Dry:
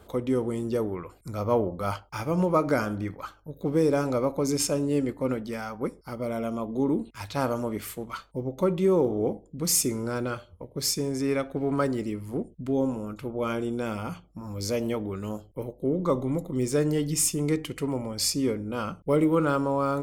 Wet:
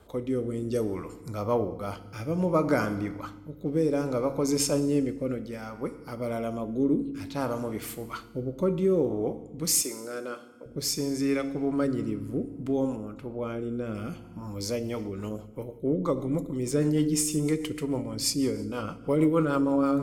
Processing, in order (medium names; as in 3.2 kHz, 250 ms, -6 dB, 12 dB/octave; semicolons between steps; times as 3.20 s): 0.71–1.16 s: peaking EQ 7 kHz +10.5 dB 1.6 oct; FDN reverb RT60 1.3 s, low-frequency decay 1.6×, high-frequency decay 0.9×, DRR 11 dB; rotary cabinet horn 0.6 Hz, later 6.3 Hz, at 14.49 s; 9.82–10.66 s: high-pass 420 Hz 12 dB/octave; 12.96–13.95 s: treble shelf 2.4 kHz -8.5 dB